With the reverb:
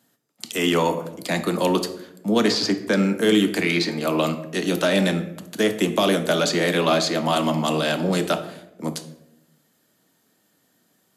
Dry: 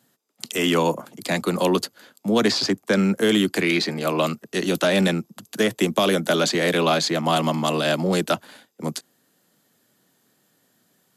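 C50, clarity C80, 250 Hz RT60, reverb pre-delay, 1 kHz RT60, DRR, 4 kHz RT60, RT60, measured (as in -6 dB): 11.5 dB, 14.0 dB, 1.3 s, 3 ms, 0.75 s, 7.5 dB, 0.50 s, 0.90 s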